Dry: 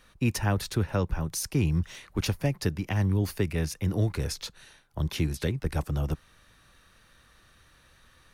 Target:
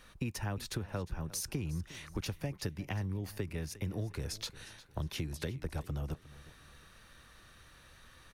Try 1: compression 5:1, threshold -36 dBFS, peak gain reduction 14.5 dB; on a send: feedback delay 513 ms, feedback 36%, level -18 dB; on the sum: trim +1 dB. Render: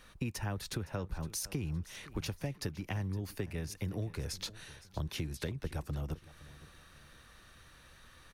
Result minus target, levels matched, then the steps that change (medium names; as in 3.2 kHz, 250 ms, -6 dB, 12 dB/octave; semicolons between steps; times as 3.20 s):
echo 156 ms late
change: feedback delay 357 ms, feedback 36%, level -18 dB